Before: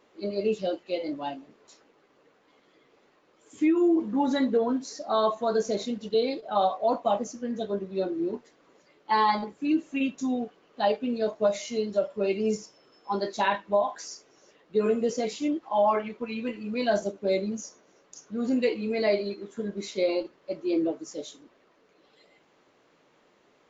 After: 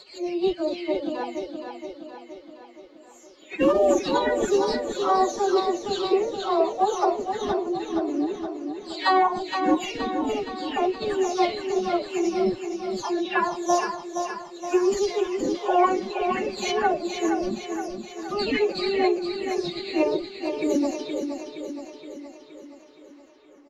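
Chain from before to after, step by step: delay that grows with frequency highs early, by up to 430 ms; formant-preserving pitch shift +9.5 st; feedback delay 470 ms, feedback 57%, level -7 dB; trim +3.5 dB

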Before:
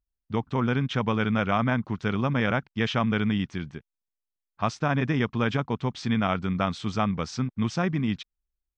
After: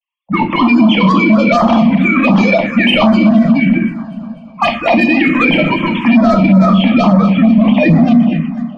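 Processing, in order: formants replaced by sine waves; hum notches 50/100/150/200/250/300/350 Hz; harmonic-percussive split percussive -5 dB; in parallel at +1 dB: compression 4:1, threshold -33 dBFS, peak gain reduction 15 dB; on the sum: static phaser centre 1.5 kHz, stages 6; saturation -27.5 dBFS, distortion -8 dB; on a send: two-band feedback delay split 470 Hz, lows 455 ms, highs 247 ms, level -14 dB; on the sum: simulated room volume 93 m³, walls mixed, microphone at 0.75 m; harmonic-percussive split percussive +4 dB; touch-sensitive phaser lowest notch 260 Hz, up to 2.8 kHz, full sweep at -23.5 dBFS; loudness maximiser +25.5 dB; trim -1 dB

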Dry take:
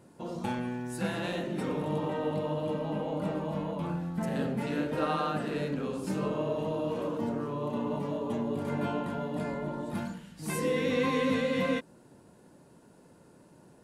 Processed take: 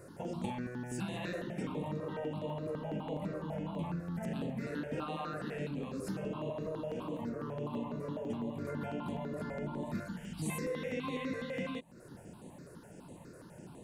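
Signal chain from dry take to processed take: compression 5:1, threshold -42 dBFS, peak gain reduction 16 dB; stepped phaser 12 Hz 860–5200 Hz; trim +8 dB

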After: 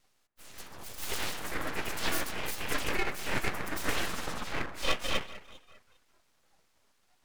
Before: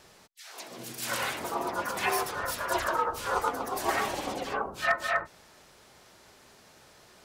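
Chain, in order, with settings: high-pass 110 Hz; echo whose repeats swap between lows and highs 199 ms, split 1.5 kHz, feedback 52%, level -13.5 dB; spectral noise reduction 14 dB; full-wave rectifier

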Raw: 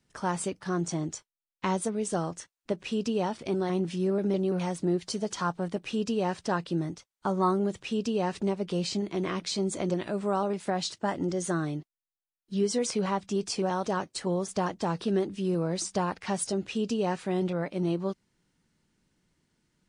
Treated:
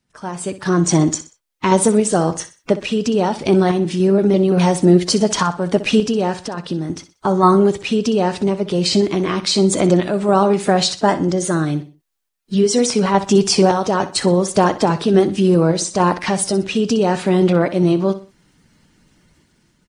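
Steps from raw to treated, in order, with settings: coarse spectral quantiser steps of 15 dB; level rider gain up to 15 dB; in parallel at -2.5 dB: peak limiter -11.5 dBFS, peak gain reduction 9 dB; 6.35–6.90 s: on the sum: compression 4:1, threshold -18 dBFS, peak gain reduction 9.5 dB; random-step tremolo; on a send: feedback delay 62 ms, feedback 34%, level -14 dB

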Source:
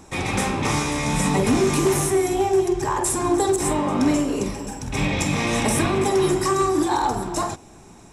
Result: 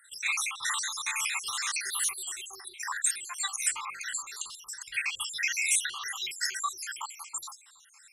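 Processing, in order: random holes in the spectrogram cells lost 72%; inverse Chebyshev high-pass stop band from 670 Hz, stop band 40 dB; trim +3 dB

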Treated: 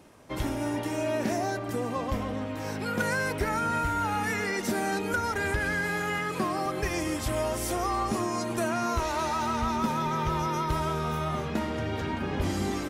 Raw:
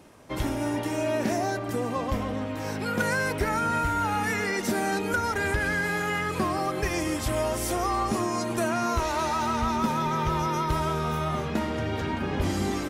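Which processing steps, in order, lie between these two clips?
6.18–6.66 s: high-pass 120 Hz 24 dB/octave; trim -2 dB

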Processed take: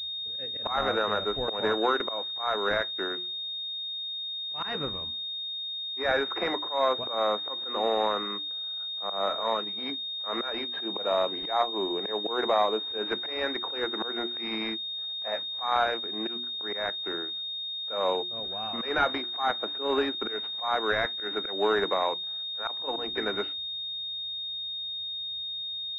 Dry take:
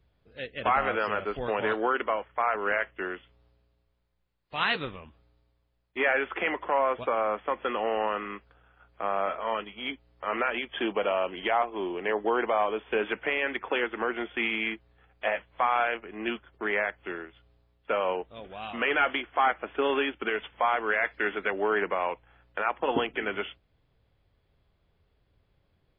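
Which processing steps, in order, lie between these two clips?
hum notches 60/120/180/240/300/360 Hz; slow attack 154 ms; class-D stage that switches slowly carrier 3.7 kHz; trim +2 dB

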